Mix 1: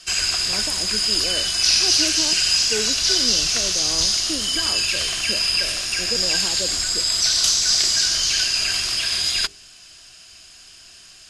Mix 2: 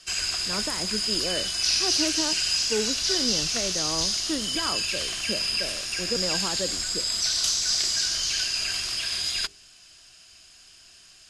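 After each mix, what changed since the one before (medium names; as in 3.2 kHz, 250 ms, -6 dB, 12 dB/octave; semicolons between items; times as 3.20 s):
speech: remove band-pass filter 410 Hz, Q 0.52; background -6.5 dB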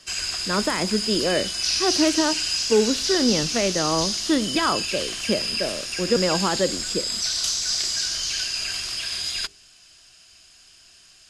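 speech +9.0 dB; reverb: on, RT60 0.65 s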